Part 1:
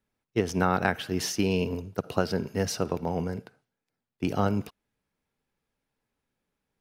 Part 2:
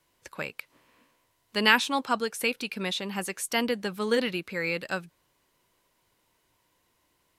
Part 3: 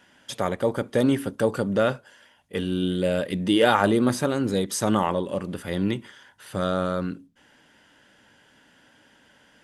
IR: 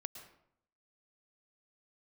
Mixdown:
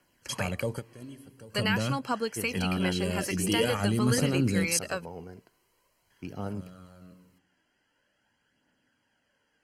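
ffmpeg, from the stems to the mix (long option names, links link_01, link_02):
-filter_complex "[0:a]adelay=2000,volume=-12.5dB[link_01];[1:a]acompressor=threshold=-26dB:ratio=4,volume=-1dB,asplit=2[link_02][link_03];[2:a]acrossover=split=200|3000[link_04][link_05][link_06];[link_05]acompressor=threshold=-42dB:ratio=2.5[link_07];[link_04][link_07][link_06]amix=inputs=3:normalize=0,volume=0.5dB,asplit=3[link_08][link_09][link_10];[link_08]atrim=end=4.79,asetpts=PTS-STARTPTS,afade=type=out:start_time=4.786:duration=0.004:curve=hsin[link_11];[link_09]atrim=start=4.79:end=6.1,asetpts=PTS-STARTPTS,volume=0[link_12];[link_10]atrim=start=6.1,asetpts=PTS-STARTPTS,afade=type=in:duration=0.004:curve=hsin[link_13];[link_11][link_12][link_13]concat=n=3:v=0:a=1,asplit=2[link_14][link_15];[link_15]volume=-15.5dB[link_16];[link_03]apad=whole_len=424878[link_17];[link_14][link_17]sidechaingate=range=-33dB:threshold=-59dB:ratio=16:detection=peak[link_18];[3:a]atrim=start_sample=2205[link_19];[link_16][link_19]afir=irnorm=-1:irlink=0[link_20];[link_01][link_02][link_18][link_20]amix=inputs=4:normalize=0,aphaser=in_gain=1:out_gain=1:delay=3.1:decay=0.36:speed=0.46:type=triangular,asuperstop=centerf=3600:order=20:qfactor=6.3"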